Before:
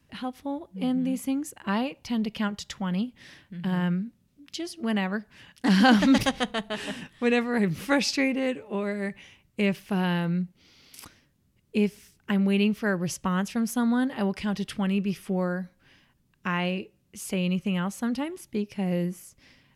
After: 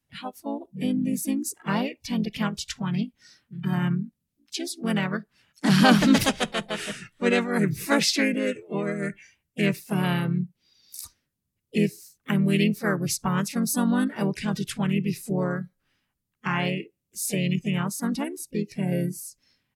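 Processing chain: high shelf 7100 Hz +11.5 dB; spectral noise reduction 16 dB; harmoniser -4 st -5 dB, +3 st -14 dB

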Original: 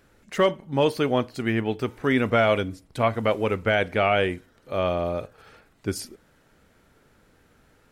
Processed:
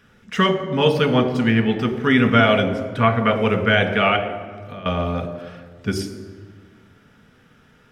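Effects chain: 2.86–3.36 EQ curve 950 Hz 0 dB, 1400 Hz +4 dB, 5200 Hz -6 dB; 4.16–4.86 compressor 16:1, threshold -37 dBFS, peak gain reduction 19 dB; reverb RT60 1.6 s, pre-delay 3 ms, DRR 5 dB; gain -2 dB

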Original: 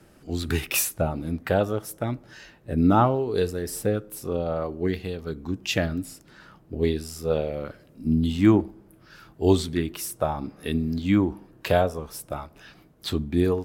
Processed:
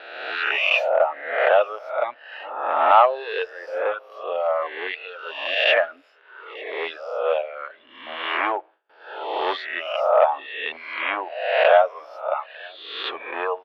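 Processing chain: spectral swells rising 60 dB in 1.19 s; on a send: echo 0.897 s -21.5 dB; on the sum: reverb removal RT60 1.9 s; in parallel at -7.5 dB: wavefolder -17.5 dBFS; on the sum: elliptic band-pass 580–3000 Hz, stop band 50 dB; gate with hold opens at -55 dBFS; gain +6 dB

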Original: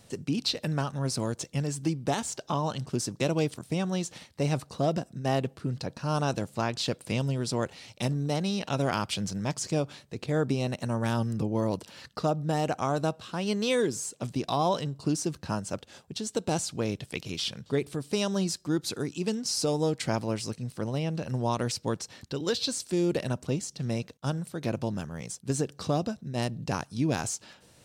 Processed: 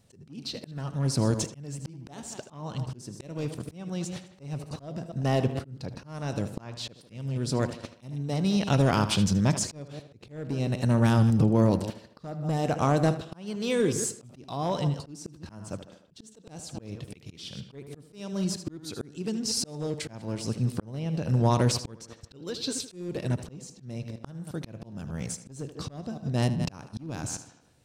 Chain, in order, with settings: reverse delay 0.119 s, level -13.5 dB; in parallel at +0.5 dB: compressor 6:1, threshold -34 dBFS, peak gain reduction 12.5 dB; on the sum: low shelf 270 Hz +7.5 dB; gate -32 dBFS, range -17 dB; overloaded stage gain 14 dB; wow and flutter 29 cents; tape echo 77 ms, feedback 53%, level -13 dB, low-pass 5000 Hz; auto swell 0.714 s

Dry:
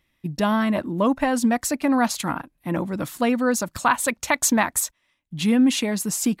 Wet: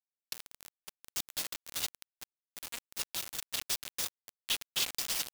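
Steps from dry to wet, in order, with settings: recorder AGC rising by 42 dB/s; LPF 7500 Hz 12 dB/oct; notch 4100 Hz, Q 9; spectral gate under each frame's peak -10 dB weak; high shelf 5000 Hz -10 dB; compressor 20:1, threshold -31 dBFS, peak gain reduction 11 dB; power-law curve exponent 0.35; ladder high-pass 2600 Hz, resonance 40%; Schroeder reverb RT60 1.6 s, combs from 26 ms, DRR 16.5 dB; tempo 1.2×; feedback echo 0.284 s, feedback 42%, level -8 dB; bit-crush 5-bit

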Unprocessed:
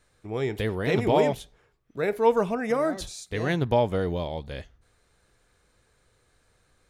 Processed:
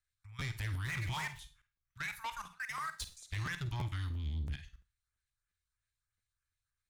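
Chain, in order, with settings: 0.86–1.39 median filter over 9 samples; gate -55 dBFS, range -17 dB; inverse Chebyshev band-stop 250–560 Hz, stop band 60 dB; 4.1–4.53 resonant low shelf 660 Hz +13.5 dB, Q 1.5; level quantiser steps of 19 dB; LFO notch saw up 3.1 Hz 530–5100 Hz; soft clip -39 dBFS, distortion -13 dB; 2.48–3.17 power-law curve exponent 2; flutter echo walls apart 8.6 m, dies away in 0.21 s; Schroeder reverb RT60 0.31 s, DRR 12.5 dB; crackling interface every 0.34 s, samples 512, repeat, from 0.39; gain +5.5 dB

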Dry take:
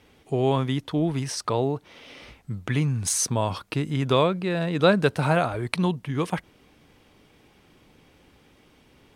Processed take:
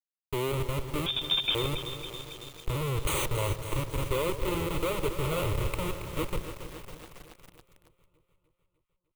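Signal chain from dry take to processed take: Schmitt trigger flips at -24 dBFS; fixed phaser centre 1100 Hz, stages 8; bit-crush 8-bit; echo with dull and thin repeats by turns 0.151 s, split 1100 Hz, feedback 78%, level -13.5 dB; 1.06–1.55 inverted band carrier 3600 Hz; lo-fi delay 0.276 s, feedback 80%, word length 7-bit, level -10 dB; gain +1 dB

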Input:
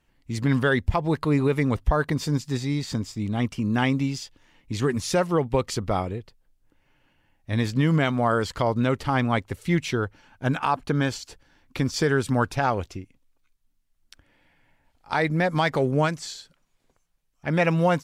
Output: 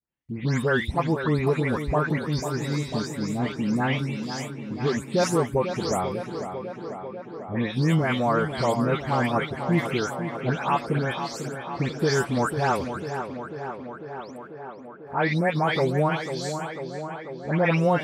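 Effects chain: spectral delay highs late, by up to 0.239 s; HPF 78 Hz; gate with hold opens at -53 dBFS; on a send: tape echo 0.495 s, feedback 82%, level -7.5 dB, low-pass 2600 Hz

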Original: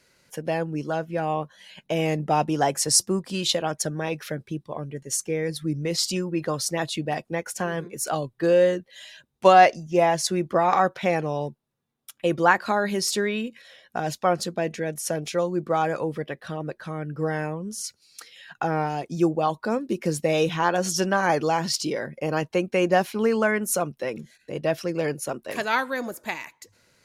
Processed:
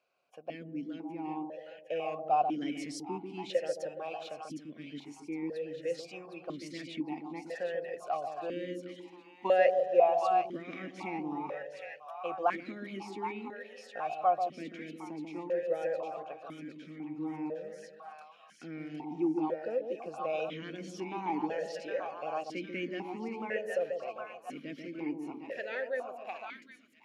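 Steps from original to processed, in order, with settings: split-band echo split 880 Hz, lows 0.139 s, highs 0.761 s, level -5 dB; vowel sequencer 2 Hz; gain -1 dB

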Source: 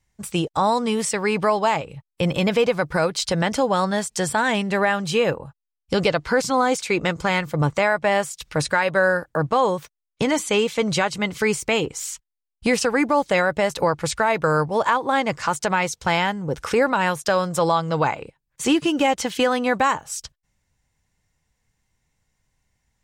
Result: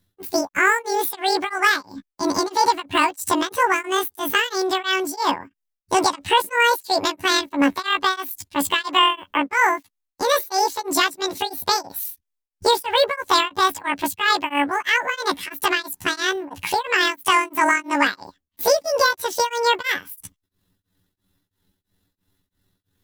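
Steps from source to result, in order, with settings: delay-line pitch shifter +11 st; beating tremolo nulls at 3 Hz; gain +4 dB

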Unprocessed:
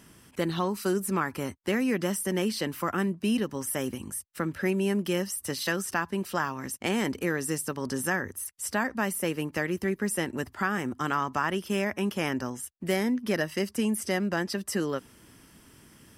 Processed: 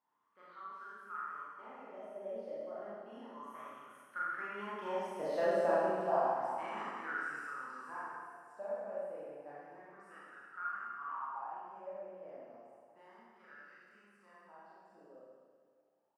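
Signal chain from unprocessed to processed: Doppler pass-by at 5.49, 19 m/s, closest 7.9 m; on a send: feedback echo 0.344 s, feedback 42%, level -19 dB; on the sum: wah 0.31 Hz 580–1400 Hz, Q 9.1; Schroeder reverb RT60 1.8 s, combs from 27 ms, DRR -9 dB; gain +7.5 dB

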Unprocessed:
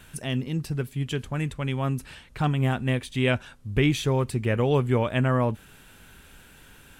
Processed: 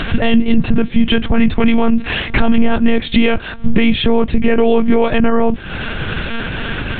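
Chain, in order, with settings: compressor 6:1, threshold -37 dBFS, peak gain reduction 18.5 dB; dynamic EQ 1100 Hz, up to -5 dB, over -60 dBFS, Q 2; monotone LPC vocoder at 8 kHz 230 Hz; LPF 3100 Hz 6 dB/oct; maximiser +32 dB; gain -1 dB

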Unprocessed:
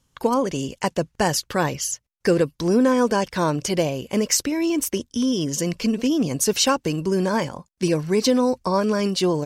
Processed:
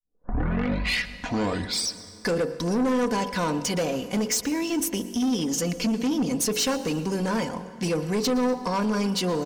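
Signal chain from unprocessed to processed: tape start at the beginning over 2.36 s; comb 4.1 ms, depth 57%; de-hum 47.43 Hz, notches 21; in parallel at 0 dB: compressor, threshold -23 dBFS, peak gain reduction 12 dB; on the sum: soft clip -15 dBFS, distortion -11 dB; on a send: echo 0.116 s -21 dB; on the sum: plate-style reverb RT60 2.8 s, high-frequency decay 0.65×, pre-delay 0.115 s, DRR 15.5 dB; gain -5 dB

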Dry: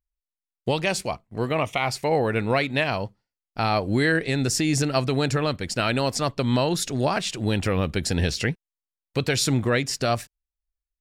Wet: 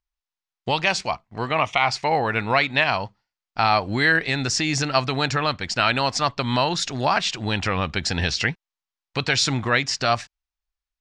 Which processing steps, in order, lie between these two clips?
LPF 6300 Hz 24 dB/oct; resonant low shelf 650 Hz -7 dB, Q 1.5; gain +5 dB

